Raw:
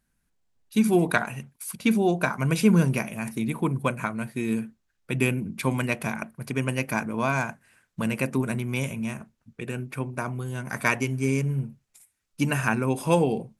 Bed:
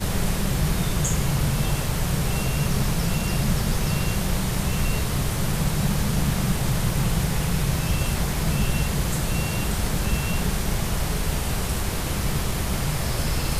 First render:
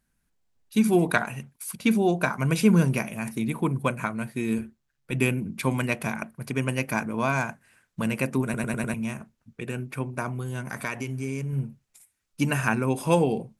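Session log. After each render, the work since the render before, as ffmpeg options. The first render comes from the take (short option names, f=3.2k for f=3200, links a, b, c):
-filter_complex "[0:a]asettb=1/sr,asplit=3[a][b][c];[a]atrim=end=4.584[d];[b]atrim=start=4.58:end=5.13,asetpts=PTS-STARTPTS,afade=t=in:d=0.004:c=qsin,afade=t=out:st=0.546:d=0.004:c=qsin,tremolo=f=140:d=0.519[e];[c]atrim=start=5.126[f];[d][e]acrossfade=d=0.004:c1=hsin:c2=qsin[g];[g][f]acrossfade=d=0.004:c1=qsin:c2=hsin,asettb=1/sr,asplit=3[h][i][j];[h]atrim=end=10.624[k];[i]atrim=start=10.62:end=11.53,asetpts=PTS-STARTPTS,afade=t=in:d=0.004:c=qsin,afade=t=out:st=0.906:d=0.004:c=qsin,acompressor=threshold=-29dB:ratio=2.5:attack=3.2:release=140:knee=1:detection=peak[l];[j]atrim=start=11.526[m];[k][l]acrossfade=d=0.004:c1=hsin:c2=qsin[n];[n][m]acrossfade=d=0.004:c1=qsin:c2=hsin,asplit=6[o][p][q][r][s][t];[o]atrim=end=8.542[u];[p]atrim=start=8.438:end=8.542[v];[q]atrim=start=8.438:end=8.542[w];[r]atrim=start=8.438:end=8.542[x];[s]atrim=start=8.438:end=8.542[y];[t]atrim=start=8.938[z];[u][v]acrossfade=d=0.004:c1=hsin:c2=hsin[aa];[aa][w]acrossfade=d=0.004:c1=hsin:c2=hsin[ab];[ab][x]acrossfade=d=0.004:c1=hsin:c2=hsin[ac];[ac][y]acrossfade=d=0.004:c1=hsin:c2=hsin[ad];[ad][z]acrossfade=d=0.004:c1=hsin:c2=hsin"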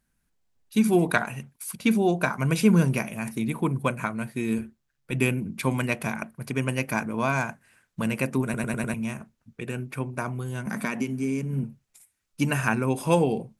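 -filter_complex "[0:a]asettb=1/sr,asplit=3[a][b][c];[a]atrim=end=10.664[d];[b]atrim=start=10.66:end=11.64,asetpts=PTS-STARTPTS,afade=t=in:d=0.004:c=qsin,afade=t=out:st=0.976:d=0.004:c=qsin,highpass=f=200:t=q:w=4.9[e];[c]atrim=start=11.636[f];[d][e]acrossfade=d=0.004:c1=hsin:c2=qsin[g];[g][f]acrossfade=d=0.004:c1=qsin:c2=hsin"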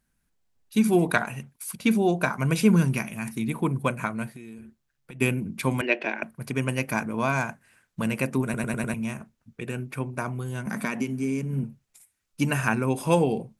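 -filter_complex "[0:a]asettb=1/sr,asplit=3[a][b][c];[a]atrim=end=2.764[d];[b]atrim=start=2.76:end=3.48,asetpts=PTS-STARTPTS,afade=t=in:d=0.004:c=qsin,afade=t=out:st=0.716:d=0.004:c=qsin,equalizer=f=540:w=1.5:g=-7[e];[c]atrim=start=3.476[f];[d][e]acrossfade=d=0.004:c1=hsin:c2=qsin[g];[g][f]acrossfade=d=0.004:c1=qsin:c2=hsin,asplit=3[h][i][j];[h]afade=t=out:st=4.29:d=0.02[k];[i]acompressor=threshold=-38dB:ratio=12:attack=3.2:release=140:knee=1:detection=peak,afade=t=in:st=4.29:d=0.02,afade=t=out:st=5.2:d=0.02[l];[j]afade=t=in:st=5.2:d=0.02[m];[k][l][m]amix=inputs=3:normalize=0,asettb=1/sr,asplit=3[n][o][p];[n]atrim=end=5.814[q];[o]atrim=start=5.81:end=6.23,asetpts=PTS-STARTPTS,afade=t=in:d=0.004:c=qsin,afade=t=out:st=0.416:d=0.004:c=qsin,highpass=f=280:w=0.5412,highpass=f=280:w=1.3066,equalizer=f=350:t=q:w=4:g=9,equalizer=f=590:t=q:w=4:g=5,equalizer=f=1.2k:t=q:w=4:g=-8,equalizer=f=1.7k:t=q:w=4:g=6,equalizer=f=2.7k:t=q:w=4:g=7,lowpass=f=4.4k:w=0.5412,lowpass=f=4.4k:w=1.3066[r];[p]atrim=start=6.226[s];[q][r]acrossfade=d=0.004:c1=hsin:c2=qsin[t];[t][s]acrossfade=d=0.004:c1=qsin:c2=hsin"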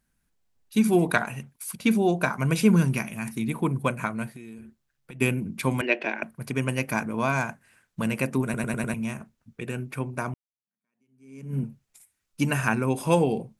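-filter_complex "[0:a]asplit=2[a][b];[a]atrim=end=10.34,asetpts=PTS-STARTPTS,afade=t=out:st=10.336:d=0.004:c=hsin[c];[b]atrim=start=10.34,asetpts=PTS-STARTPTS,afade=t=in:d=1.21:c=exp[d];[c][d]concat=n=2:v=0:a=1"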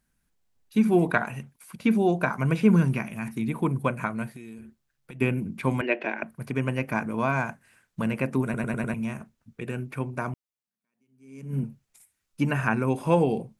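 -filter_complex "[0:a]acrossover=split=2700[a][b];[b]acompressor=threshold=-49dB:ratio=4:attack=1:release=60[c];[a][c]amix=inputs=2:normalize=0"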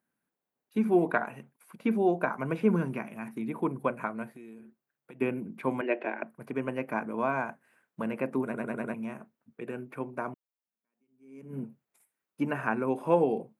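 -af "highpass=290,equalizer=f=6k:t=o:w=2.7:g=-15"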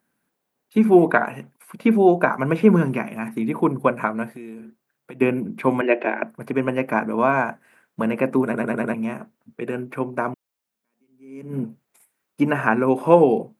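-af "volume=10.5dB,alimiter=limit=-1dB:level=0:latency=1"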